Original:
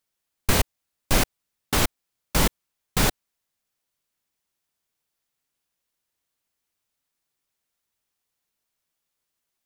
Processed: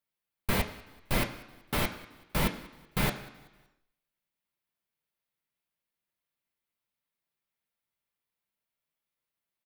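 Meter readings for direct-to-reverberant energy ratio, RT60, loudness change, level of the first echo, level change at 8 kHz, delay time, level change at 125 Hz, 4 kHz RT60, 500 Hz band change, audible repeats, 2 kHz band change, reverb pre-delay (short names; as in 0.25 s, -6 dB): 2.0 dB, 1.2 s, -7.5 dB, -22.0 dB, -13.0 dB, 0.189 s, -6.0 dB, 1.2 s, -6.5 dB, 2, -5.5 dB, 3 ms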